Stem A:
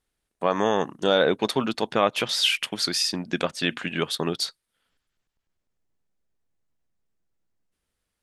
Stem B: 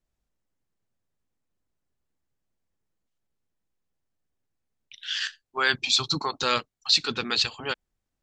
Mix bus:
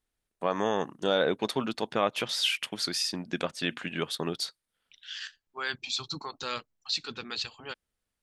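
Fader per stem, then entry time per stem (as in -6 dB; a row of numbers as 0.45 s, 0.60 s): -5.5 dB, -10.0 dB; 0.00 s, 0.00 s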